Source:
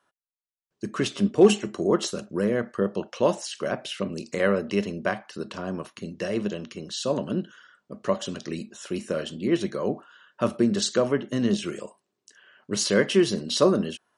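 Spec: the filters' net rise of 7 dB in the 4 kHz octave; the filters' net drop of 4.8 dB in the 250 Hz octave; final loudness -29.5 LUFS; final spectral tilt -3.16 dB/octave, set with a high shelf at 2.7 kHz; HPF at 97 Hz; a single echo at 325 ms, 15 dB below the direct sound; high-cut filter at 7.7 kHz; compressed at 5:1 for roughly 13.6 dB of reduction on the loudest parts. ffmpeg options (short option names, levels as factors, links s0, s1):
-af "highpass=97,lowpass=7700,equalizer=f=250:t=o:g=-7,highshelf=f=2700:g=5.5,equalizer=f=4000:t=o:g=4.5,acompressor=threshold=0.0355:ratio=5,aecho=1:1:325:0.178,volume=1.58"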